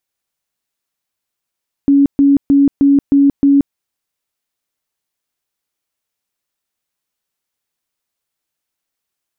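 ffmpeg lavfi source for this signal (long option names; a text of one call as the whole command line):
ffmpeg -f lavfi -i "aevalsrc='0.501*sin(2*PI*280*mod(t,0.31))*lt(mod(t,0.31),50/280)':duration=1.86:sample_rate=44100" out.wav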